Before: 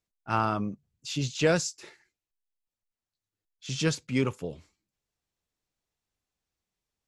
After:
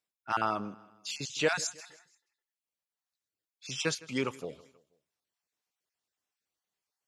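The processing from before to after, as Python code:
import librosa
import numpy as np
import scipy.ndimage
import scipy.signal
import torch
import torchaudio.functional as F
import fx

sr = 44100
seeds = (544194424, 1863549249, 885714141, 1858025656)

p1 = fx.spec_dropout(x, sr, seeds[0], share_pct=24)
p2 = fx.highpass(p1, sr, hz=480.0, slope=6)
y = p2 + fx.echo_feedback(p2, sr, ms=160, feedback_pct=46, wet_db=-21.0, dry=0)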